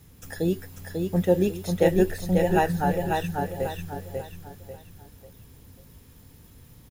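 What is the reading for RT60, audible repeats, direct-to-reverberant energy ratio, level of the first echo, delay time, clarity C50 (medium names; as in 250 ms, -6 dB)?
no reverb, 4, no reverb, -4.0 dB, 543 ms, no reverb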